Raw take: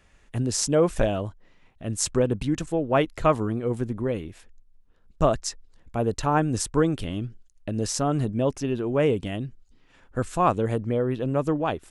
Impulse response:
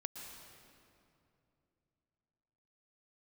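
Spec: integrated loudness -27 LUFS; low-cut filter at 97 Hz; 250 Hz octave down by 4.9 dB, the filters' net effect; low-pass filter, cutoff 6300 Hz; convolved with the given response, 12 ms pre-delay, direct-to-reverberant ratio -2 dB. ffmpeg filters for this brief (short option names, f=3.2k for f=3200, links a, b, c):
-filter_complex "[0:a]highpass=97,lowpass=6.3k,equalizer=f=250:t=o:g=-6.5,asplit=2[a][b];[1:a]atrim=start_sample=2205,adelay=12[c];[b][c]afir=irnorm=-1:irlink=0,volume=4dB[d];[a][d]amix=inputs=2:normalize=0,volume=-3dB"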